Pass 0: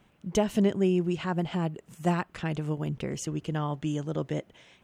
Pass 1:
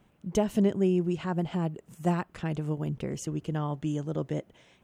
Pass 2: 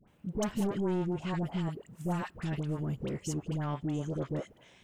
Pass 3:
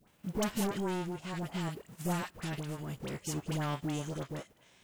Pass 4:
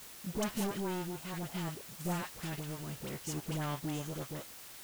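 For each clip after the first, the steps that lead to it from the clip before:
bell 2900 Hz -5 dB 2.9 oct
soft clip -27 dBFS, distortion -8 dB; dispersion highs, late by 77 ms, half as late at 1000 Hz
spectral whitening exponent 0.6; tremolo triangle 0.62 Hz, depth 55%
requantised 8-bit, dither triangular; gain -2.5 dB

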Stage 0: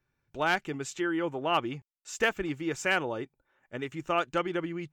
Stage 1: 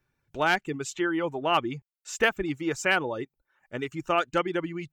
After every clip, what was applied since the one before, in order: reverb removal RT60 0.57 s; gain +3.5 dB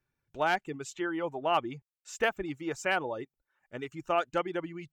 dynamic EQ 710 Hz, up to +6 dB, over -38 dBFS, Q 1.3; gain -7 dB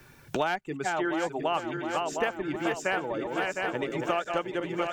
regenerating reverse delay 0.354 s, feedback 73%, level -7 dB; three-band squash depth 100%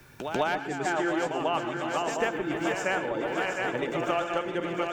reverse echo 0.144 s -7.5 dB; on a send at -10 dB: reverb RT60 0.35 s, pre-delay 0.107 s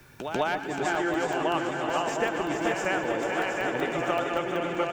feedback echo 0.434 s, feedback 43%, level -6 dB; crackling interface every 0.19 s, samples 64, zero, from 0.95

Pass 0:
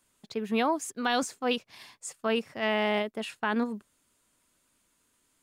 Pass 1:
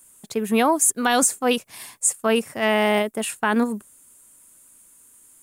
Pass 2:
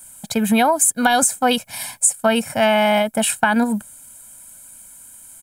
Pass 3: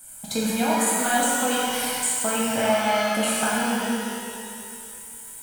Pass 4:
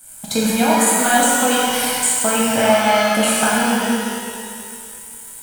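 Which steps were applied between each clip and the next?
resonant high shelf 6500 Hz +12.5 dB, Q 1.5; gain +8 dB
comb 1.3 ms, depth 98%; compressor 5:1, threshold -20 dBFS, peak gain reduction 8.5 dB; gain +7 dB
compressor 4:1, threshold -22 dBFS, peak gain reduction 10 dB; shimmer reverb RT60 2.3 s, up +12 st, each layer -8 dB, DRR -7 dB; gain -5.5 dB
G.711 law mismatch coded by A; gain +7.5 dB

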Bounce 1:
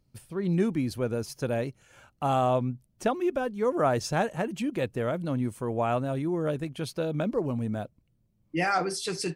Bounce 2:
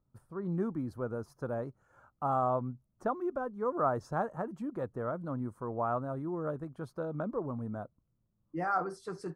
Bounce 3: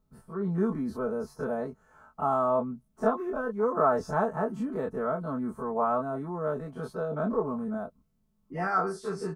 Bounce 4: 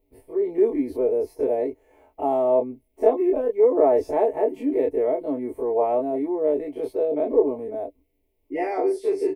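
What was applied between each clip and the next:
resonant high shelf 1800 Hz -13 dB, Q 3; gain -8 dB
spectral dilation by 60 ms; comb 4.6 ms, depth 86%
EQ curve 110 Hz 0 dB, 190 Hz -29 dB, 290 Hz +13 dB, 620 Hz +6 dB, 910 Hz -1 dB, 1400 Hz -24 dB, 2100 Hz +12 dB, 3800 Hz -1 dB, 6700 Hz -7 dB, 13000 Hz +6 dB; gain +2 dB

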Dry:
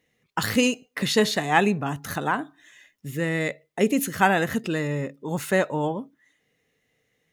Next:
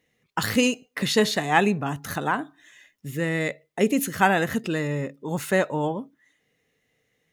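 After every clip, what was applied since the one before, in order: nothing audible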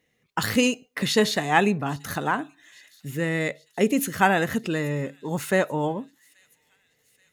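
thin delay 0.83 s, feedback 59%, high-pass 3300 Hz, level -23 dB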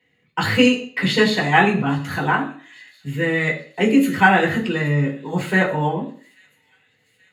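reverb RT60 0.45 s, pre-delay 3 ms, DRR -4.5 dB; gain -9 dB

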